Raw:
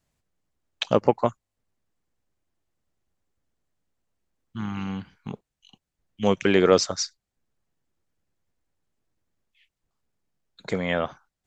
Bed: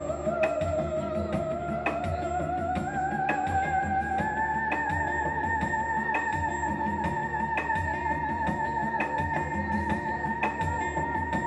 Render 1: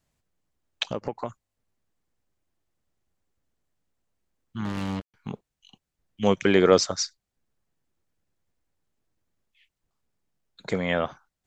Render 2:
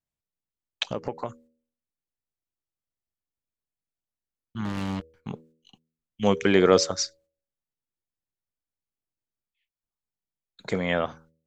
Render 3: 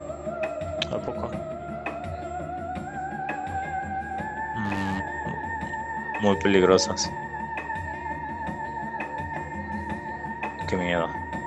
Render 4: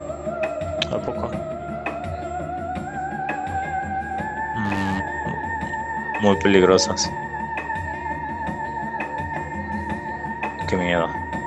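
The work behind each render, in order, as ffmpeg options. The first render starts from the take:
ffmpeg -i in.wav -filter_complex "[0:a]asplit=3[link_01][link_02][link_03];[link_01]afade=type=out:start_time=0.87:duration=0.02[link_04];[link_02]acompressor=threshold=-29dB:ratio=3:attack=3.2:release=140:knee=1:detection=peak,afade=type=in:start_time=0.87:duration=0.02,afade=type=out:start_time=1.29:duration=0.02[link_05];[link_03]afade=type=in:start_time=1.29:duration=0.02[link_06];[link_04][link_05][link_06]amix=inputs=3:normalize=0,asettb=1/sr,asplit=3[link_07][link_08][link_09];[link_07]atrim=end=4.654[link_10];[link_08]atrim=start=4.65:end=5.14,asetpts=PTS-STARTPTS,afade=type=in:duration=0.004:curve=qsin,afade=type=out:start_time=0.486:duration=0.004:curve=qsin,acrusher=bits=4:mix=0:aa=0.5[link_11];[link_09]atrim=start=5.136[link_12];[link_10][link_11]acrossfade=duration=0.004:curve1=hsin:curve2=qsin[link_13];[link_13][link_12]acrossfade=duration=0.004:curve1=qsin:curve2=hsin,asettb=1/sr,asplit=3[link_14][link_15][link_16];[link_14]atrim=end=6.344[link_17];[link_15]atrim=start=6.34:end=6.82,asetpts=PTS-STARTPTS,afade=type=in:duration=0.004:curve=qsin,afade=type=out:start_time=0.476:duration=0.004:curve=qsin,bandreject=frequency=2700:width=12[link_18];[link_16]atrim=start=6.816[link_19];[link_17][link_18]acrossfade=duration=0.004:curve1=hsin:curve2=qsin[link_20];[link_20][link_19]acrossfade=duration=0.004:curve1=qsin:curve2=hsin" out.wav
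ffmpeg -i in.wav -af "agate=range=-17dB:threshold=-55dB:ratio=16:detection=peak,bandreject=frequency=80.16:width_type=h:width=4,bandreject=frequency=160.32:width_type=h:width=4,bandreject=frequency=240.48:width_type=h:width=4,bandreject=frequency=320.64:width_type=h:width=4,bandreject=frequency=400.8:width_type=h:width=4,bandreject=frequency=480.96:width_type=h:width=4,bandreject=frequency=561.12:width_type=h:width=4" out.wav
ffmpeg -i in.wav -i bed.wav -filter_complex "[1:a]volume=-3.5dB[link_01];[0:a][link_01]amix=inputs=2:normalize=0" out.wav
ffmpeg -i in.wav -af "volume=4.5dB,alimiter=limit=-2dB:level=0:latency=1" out.wav

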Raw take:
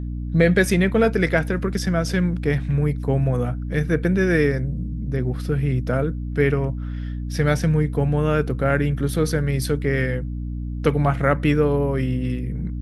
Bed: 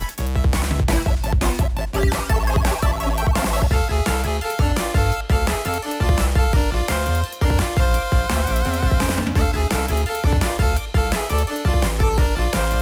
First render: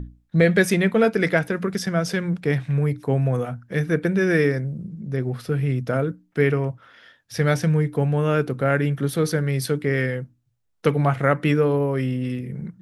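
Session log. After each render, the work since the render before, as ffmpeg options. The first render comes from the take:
ffmpeg -i in.wav -af "bandreject=frequency=60:width_type=h:width=6,bandreject=frequency=120:width_type=h:width=6,bandreject=frequency=180:width_type=h:width=6,bandreject=frequency=240:width_type=h:width=6,bandreject=frequency=300:width_type=h:width=6" out.wav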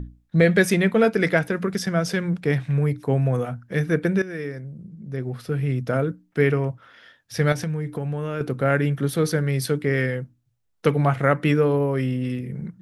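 ffmpeg -i in.wav -filter_complex "[0:a]asettb=1/sr,asplit=3[link_01][link_02][link_03];[link_01]atrim=end=7.524[link_04];[link_02]atrim=start=7.52:end=8.41,asetpts=PTS-STARTPTS,afade=type=in:duration=0.004:curve=qsin,afade=type=out:start_time=0.886:duration=0.004:curve=qsin,acompressor=threshold=-23dB:ratio=6:attack=3.2:release=140:knee=1:detection=peak[link_05];[link_03]atrim=start=8.406[link_06];[link_04][link_05]acrossfade=duration=0.004:curve1=hsin:curve2=qsin[link_07];[link_07][link_06]acrossfade=duration=0.004:curve1=qsin:curve2=hsin,asplit=2[link_08][link_09];[link_08]atrim=end=4.22,asetpts=PTS-STARTPTS,afade=type=out:start_time=4.216:duration=0.004:curve=hsin:silence=0.158489[link_10];[link_09]atrim=start=4.22,asetpts=PTS-STARTPTS,afade=type=in:duration=1.72:silence=0.158489[link_11];[link_10][link_11]concat=n=2:v=0:a=1" out.wav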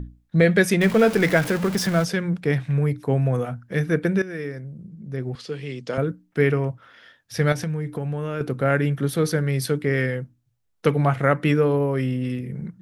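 ffmpeg -i in.wav -filter_complex "[0:a]asettb=1/sr,asplit=3[link_01][link_02][link_03];[link_01]atrim=end=0.814[link_04];[link_02]atrim=start=0.81:end=2.05,asetpts=PTS-STARTPTS,afade=type=in:duration=0.004:curve=qsin,afade=type=out:start_time=1.236:duration=0.004:curve=qsin,aeval=exprs='val(0)+0.5*0.0501*sgn(val(0))':channel_layout=same[link_05];[link_03]atrim=start=2.046[link_06];[link_04][link_05]acrossfade=duration=0.004:curve1=hsin:curve2=qsin[link_07];[link_07][link_06]acrossfade=duration=0.004:curve1=qsin:curve2=hsin,asettb=1/sr,asplit=3[link_08][link_09][link_10];[link_08]atrim=end=5.354[link_11];[link_09]atrim=start=5.35:end=5.98,asetpts=PTS-STARTPTS,afade=type=in:duration=0.004:curve=qsin,afade=type=out:start_time=0.626:duration=0.004:curve=qsin,highpass=260,equalizer=frequency=270:width_type=q:width=4:gain=-4,equalizer=frequency=670:width_type=q:width=4:gain=-7,equalizer=frequency=1400:width_type=q:width=4:gain=-7,equalizer=frequency=3100:width_type=q:width=4:gain=7,equalizer=frequency=4500:width_type=q:width=4:gain=9,equalizer=frequency=6700:width_type=q:width=4:gain=6,lowpass=frequency=8700:width=0.5412,lowpass=frequency=8700:width=1.3066[link_12];[link_10]atrim=start=5.976[link_13];[link_11][link_12]acrossfade=duration=0.004:curve1=hsin:curve2=qsin[link_14];[link_14][link_13]acrossfade=duration=0.004:curve1=qsin:curve2=hsin" out.wav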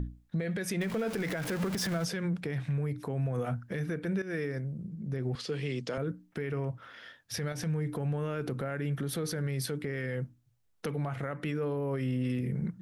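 ffmpeg -i in.wav -af "acompressor=threshold=-24dB:ratio=6,alimiter=level_in=0.5dB:limit=-24dB:level=0:latency=1:release=61,volume=-0.5dB" out.wav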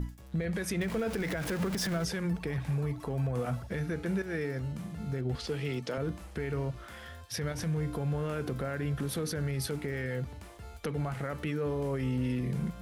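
ffmpeg -i in.wav -i bed.wav -filter_complex "[1:a]volume=-28.5dB[link_01];[0:a][link_01]amix=inputs=2:normalize=0" out.wav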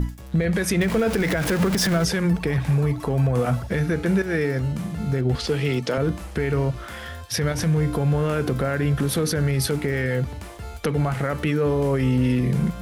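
ffmpeg -i in.wav -af "volume=11dB" out.wav

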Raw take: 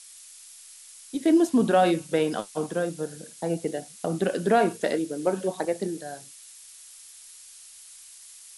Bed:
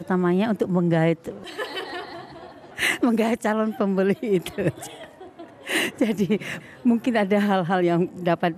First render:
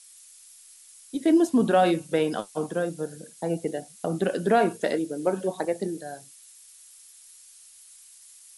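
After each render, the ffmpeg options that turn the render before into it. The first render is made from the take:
ffmpeg -i in.wav -af "afftdn=noise_reduction=6:noise_floor=-48" out.wav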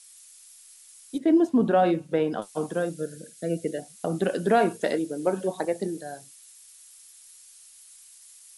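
ffmpeg -i in.wav -filter_complex "[0:a]asettb=1/sr,asplit=3[link_01][link_02][link_03];[link_01]atrim=end=1.184[link_04];[link_02]atrim=start=1.18:end=2.42,asetpts=PTS-STARTPTS,afade=type=in:duration=0.004:curve=qsin,afade=type=out:start_time=1.236:duration=0.004:curve=qsin,lowpass=frequency=1600:poles=1[link_05];[link_03]atrim=start=2.416[link_06];[link_04][link_05]acrossfade=duration=0.004:curve1=hsin:curve2=qsin[link_07];[link_07][link_06]acrossfade=duration=0.004:curve1=qsin:curve2=hsin,asettb=1/sr,asplit=3[link_08][link_09][link_10];[link_08]atrim=end=2.944[link_11];[link_09]atrim=start=2.94:end=3.79,asetpts=PTS-STARTPTS,afade=type=in:duration=0.004:curve=qsin,afade=type=out:start_time=0.846:duration=0.004:curve=qsin,asuperstop=centerf=930:order=8:qfactor=1.4[link_12];[link_10]atrim=start=3.786[link_13];[link_11][link_12]acrossfade=duration=0.004:curve1=hsin:curve2=qsin[link_14];[link_14][link_13]acrossfade=duration=0.004:curve1=qsin:curve2=hsin" out.wav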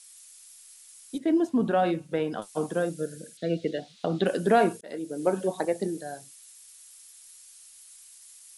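ffmpeg -i in.wav -filter_complex "[0:a]asettb=1/sr,asplit=3[link_01][link_02][link_03];[link_01]atrim=end=1.154[link_04];[link_02]atrim=start=1.15:end=2.53,asetpts=PTS-STARTPTS,afade=type=in:duration=0.004:curve=qsin,afade=type=out:start_time=1.376:duration=0.004:curve=qsin,equalizer=frequency=410:width_type=o:width=2.8:gain=-4[link_05];[link_03]atrim=start=2.526[link_06];[link_04][link_05]acrossfade=duration=0.004:curve1=hsin:curve2=qsin[link_07];[link_07][link_06]acrossfade=duration=0.004:curve1=qsin:curve2=hsin,asettb=1/sr,asplit=3[link_08][link_09][link_10];[link_08]atrim=end=3.374[link_11];[link_09]atrim=start=3.37:end=4.26,asetpts=PTS-STARTPTS,afade=type=in:duration=0.004:curve=qsin,afade=type=out:start_time=0.886:duration=0.004:curve=qsin,lowpass=frequency=3800:width_type=q:width=3.1[link_12];[link_10]atrim=start=4.256[link_13];[link_11][link_12]acrossfade=duration=0.004:curve1=hsin:curve2=qsin[link_14];[link_14][link_13]acrossfade=duration=0.004:curve1=qsin:curve2=hsin,asplit=2[link_15][link_16];[link_15]atrim=end=4.81,asetpts=PTS-STARTPTS,afade=type=out:start_time=4.806:duration=0.004:curve=hsin[link_17];[link_16]atrim=start=4.81,asetpts=PTS-STARTPTS,afade=type=in:duration=0.42[link_18];[link_17][link_18]concat=n=2:v=0:a=1" out.wav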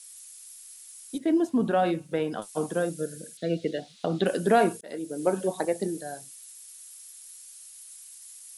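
ffmpeg -i in.wav -af "highshelf=frequency=10000:gain=9" out.wav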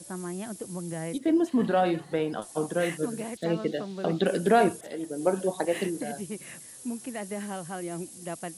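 ffmpeg -i in.wav -i bed.wav -filter_complex "[1:a]volume=-15dB[link_01];[0:a][link_01]amix=inputs=2:normalize=0" out.wav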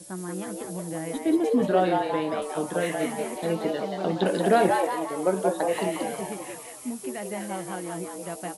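ffmpeg -i in.wav -filter_complex "[0:a]asplit=2[link_01][link_02];[link_02]adelay=16,volume=-11dB[link_03];[link_01][link_03]amix=inputs=2:normalize=0,asplit=2[link_04][link_05];[link_05]asplit=6[link_06][link_07][link_08][link_09][link_10][link_11];[link_06]adelay=180,afreqshift=140,volume=-4dB[link_12];[link_07]adelay=360,afreqshift=280,volume=-11.1dB[link_13];[link_08]adelay=540,afreqshift=420,volume=-18.3dB[link_14];[link_09]adelay=720,afreqshift=560,volume=-25.4dB[link_15];[link_10]adelay=900,afreqshift=700,volume=-32.5dB[link_16];[link_11]adelay=1080,afreqshift=840,volume=-39.7dB[link_17];[link_12][link_13][link_14][link_15][link_16][link_17]amix=inputs=6:normalize=0[link_18];[link_04][link_18]amix=inputs=2:normalize=0" out.wav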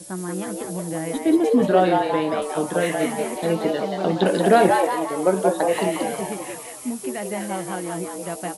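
ffmpeg -i in.wav -af "volume=5dB" out.wav

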